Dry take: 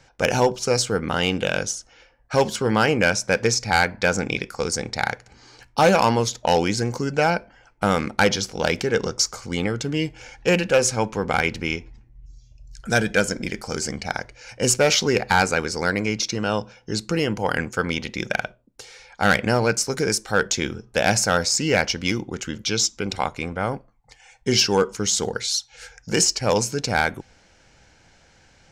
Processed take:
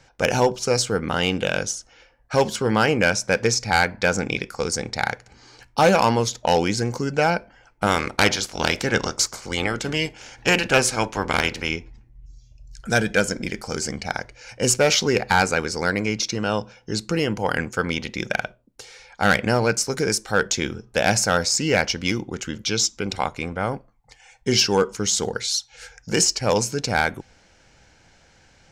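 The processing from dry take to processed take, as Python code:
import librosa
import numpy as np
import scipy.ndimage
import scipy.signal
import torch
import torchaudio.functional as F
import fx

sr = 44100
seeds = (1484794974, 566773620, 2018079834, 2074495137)

y = fx.spec_clip(x, sr, under_db=14, at=(7.86, 11.68), fade=0.02)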